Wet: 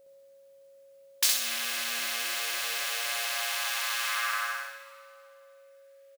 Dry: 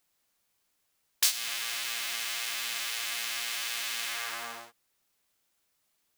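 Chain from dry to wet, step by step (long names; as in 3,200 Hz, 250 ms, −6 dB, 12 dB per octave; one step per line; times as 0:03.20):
high-pass filter sweep 140 Hz → 1,700 Hz, 0:00.93–0:04.84
steady tone 550 Hz −55 dBFS
repeating echo 64 ms, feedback 41%, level −3 dB
convolution reverb RT60 2.4 s, pre-delay 117 ms, DRR 13.5 dB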